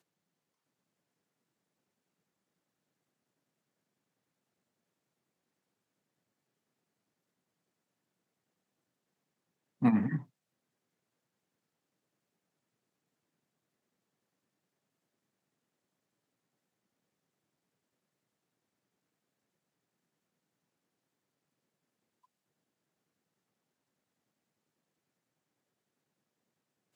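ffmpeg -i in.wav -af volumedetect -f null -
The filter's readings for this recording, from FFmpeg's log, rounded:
mean_volume: -45.5 dB
max_volume: -14.6 dB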